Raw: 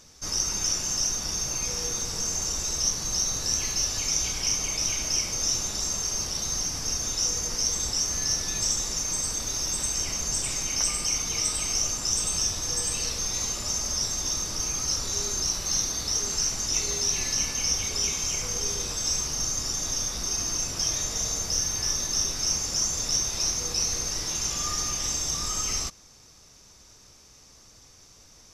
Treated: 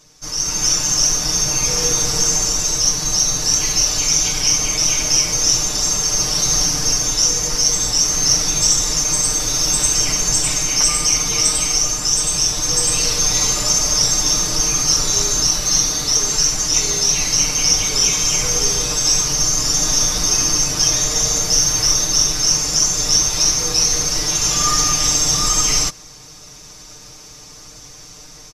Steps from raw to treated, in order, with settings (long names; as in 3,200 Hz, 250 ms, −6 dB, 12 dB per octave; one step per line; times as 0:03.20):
comb filter 6.6 ms, depth 85%
automatic gain control gain up to 11.5 dB